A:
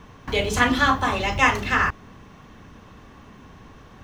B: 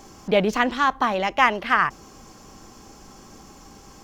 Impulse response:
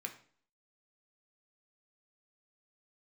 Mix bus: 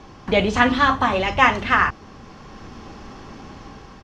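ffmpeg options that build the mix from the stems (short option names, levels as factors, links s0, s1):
-filter_complex "[0:a]acrossover=split=6400[s0][s1];[s1]acompressor=threshold=0.00141:ratio=4:attack=1:release=60[s2];[s0][s2]amix=inputs=2:normalize=0,volume=0.891[s3];[1:a]lowpass=f=4600:w=0.5412,lowpass=f=4600:w=1.3066,adelay=0.5,volume=1.12[s4];[s3][s4]amix=inputs=2:normalize=0,lowpass=10000,dynaudnorm=f=220:g=5:m=1.68"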